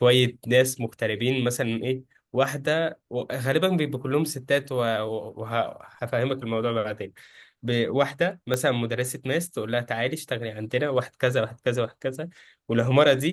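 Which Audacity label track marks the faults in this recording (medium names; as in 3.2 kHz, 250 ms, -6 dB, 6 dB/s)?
8.540000	8.540000	pop -11 dBFS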